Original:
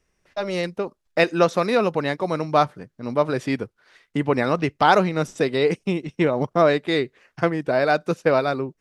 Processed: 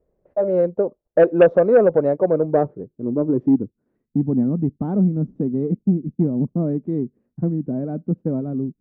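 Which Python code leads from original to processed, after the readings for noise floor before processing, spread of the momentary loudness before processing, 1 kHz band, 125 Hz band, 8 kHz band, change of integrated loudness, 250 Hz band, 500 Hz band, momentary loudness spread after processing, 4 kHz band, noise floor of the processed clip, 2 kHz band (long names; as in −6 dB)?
−74 dBFS, 9 LU, −9.0 dB, +5.0 dB, below −35 dB, +1.5 dB, +5.0 dB, +2.5 dB, 12 LU, below −20 dB, −77 dBFS, −10.5 dB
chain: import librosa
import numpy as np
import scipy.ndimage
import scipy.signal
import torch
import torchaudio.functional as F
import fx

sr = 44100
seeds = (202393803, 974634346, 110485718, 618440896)

y = fx.filter_sweep_lowpass(x, sr, from_hz=550.0, to_hz=230.0, start_s=2.19, end_s=3.99, q=2.9)
y = fx.cheby_harmonics(y, sr, harmonics=(5,), levels_db=(-19,), full_scale_db=0.5)
y = F.gain(torch.from_numpy(y), -2.5).numpy()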